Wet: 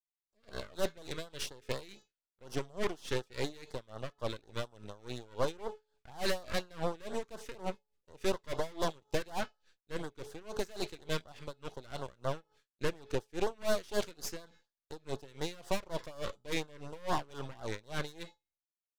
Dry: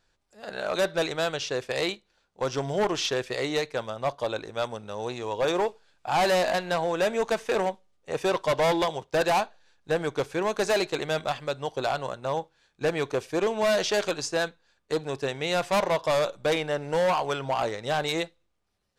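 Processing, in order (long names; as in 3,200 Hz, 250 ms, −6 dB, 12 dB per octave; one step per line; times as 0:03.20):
half-wave rectification
hum removal 428.2 Hz, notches 17
downward expander −53 dBFS
auto-filter notch sine 4.1 Hz 690–2,500 Hz
tremolo with a sine in dB 3.5 Hz, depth 23 dB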